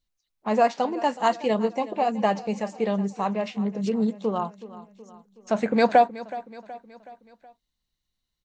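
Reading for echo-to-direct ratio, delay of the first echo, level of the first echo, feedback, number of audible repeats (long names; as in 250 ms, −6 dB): −15.5 dB, 372 ms, −17.0 dB, 51%, 4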